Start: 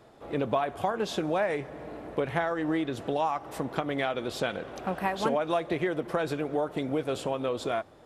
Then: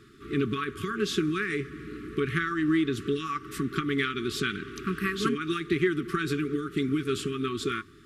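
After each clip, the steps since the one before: FFT band-reject 440–1100 Hz; trim +4.5 dB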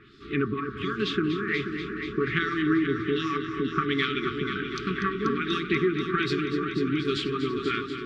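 LFO low-pass sine 1.3 Hz 810–4800 Hz; de-hum 119.3 Hz, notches 17; on a send: multi-head delay 242 ms, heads first and second, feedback 66%, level -11 dB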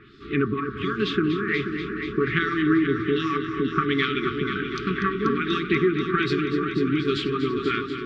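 treble shelf 6.1 kHz -10 dB; trim +3.5 dB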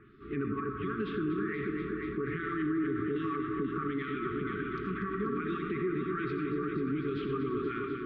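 reverberation RT60 0.45 s, pre-delay 45 ms, DRR 7 dB; peak limiter -18 dBFS, peak gain reduction 10.5 dB; low-pass 1.6 kHz 12 dB/octave; trim -6 dB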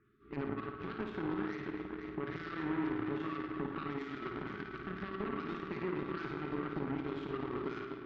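Chebyshev shaper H 3 -12 dB, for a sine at -23.5 dBFS; on a send: flutter echo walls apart 9.4 m, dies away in 0.53 s; on the sum: trim -2.5 dB

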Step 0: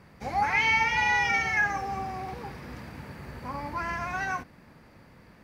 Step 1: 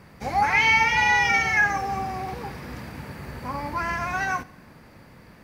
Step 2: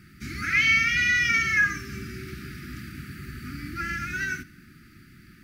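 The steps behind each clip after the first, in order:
treble shelf 8 kHz +5 dB; on a send at -20.5 dB: reverberation, pre-delay 3 ms; on the sum: trim +4.5 dB
brick-wall FIR band-stop 390–1200 Hz; treble shelf 9.5 kHz +4 dB; trim -1 dB

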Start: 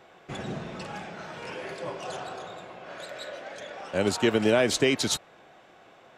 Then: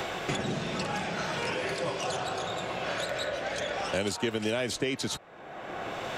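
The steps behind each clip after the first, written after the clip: three bands compressed up and down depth 100%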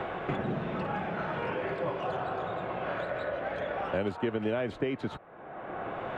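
FFT filter 1.3 kHz 0 dB, 3.3 kHz -12 dB, 5.5 kHz -29 dB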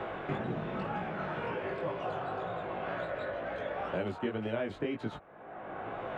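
chorus 2 Hz, delay 17 ms, depth 4.1 ms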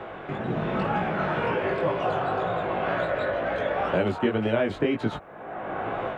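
level rider gain up to 10 dB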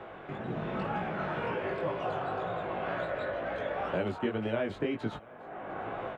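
delay 700 ms -24 dB; trim -7.5 dB

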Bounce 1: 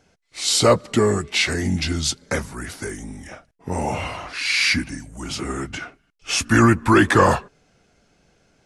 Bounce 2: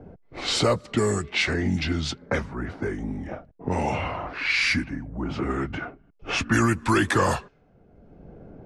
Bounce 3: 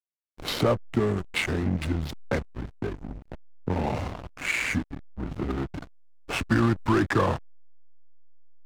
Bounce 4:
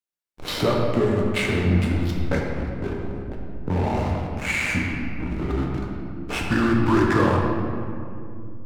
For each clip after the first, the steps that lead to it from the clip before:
level-controlled noise filter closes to 540 Hz, open at -13.5 dBFS; three bands compressed up and down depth 70%; trim -2.5 dB
low-pass that closes with the level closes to 1.8 kHz, closed at -17.5 dBFS; hysteresis with a dead band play -22 dBFS; dynamic bell 8.4 kHz, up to +4 dB, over -50 dBFS, Q 1.3
reverberation RT60 2.5 s, pre-delay 7 ms, DRR -1.5 dB

